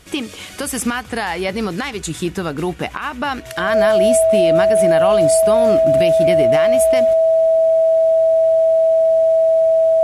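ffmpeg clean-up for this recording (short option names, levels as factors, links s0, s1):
-af "bandreject=f=650:w=30"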